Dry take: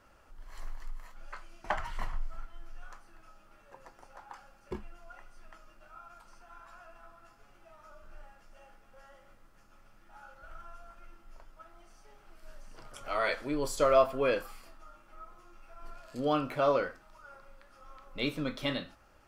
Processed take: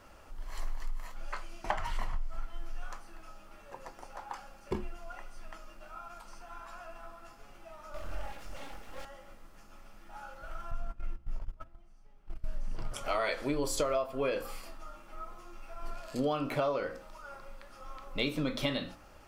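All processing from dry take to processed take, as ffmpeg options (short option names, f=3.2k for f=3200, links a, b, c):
-filter_complex "[0:a]asettb=1/sr,asplit=3[a][b][c];[a]atrim=end=7.944[d];[b]atrim=start=7.94:end=9.05,asetpts=PTS-STARTPTS,afade=t=in:d=0.004:c=qsin,afade=t=out:st=1.106:d=0.004:c=qsin,acontrast=80,aeval=exprs='abs(val(0))':c=same[e];[c]atrim=start=9.046[f];[d][e]acrossfade=d=0.004:c1=hsin:c2=qsin[g];[g][f]acrossfade=d=0.004:c1=qsin:c2=hsin,asettb=1/sr,asplit=3[h][i][j];[h]atrim=end=10.714[k];[i]atrim=start=10.71:end=12.92,asetpts=PTS-STARTPTS,afade=t=in:d=0.004:c=qsin,afade=t=out:st=2.206:d=0.004:c=qsin,agate=range=-18dB:threshold=-51dB:ratio=16:release=100:detection=peak,bass=f=250:g=12,treble=f=4k:g=-5[l];[j]atrim=start=12.916[m];[k][l]acrossfade=d=0.004:c1=hsin:c2=qsin[n];[n][m]acrossfade=d=0.004:c1=qsin:c2=hsin,equalizer=f=1.5k:t=o:w=0.67:g=-4,bandreject=f=60:t=h:w=6,bandreject=f=120:t=h:w=6,bandreject=f=180:t=h:w=6,bandreject=f=240:t=h:w=6,bandreject=f=300:t=h:w=6,bandreject=f=360:t=h:w=6,bandreject=f=420:t=h:w=6,bandreject=f=480:t=h:w=6,bandreject=f=540:t=h:w=6,acompressor=threshold=-35dB:ratio=12,volume=7.5dB"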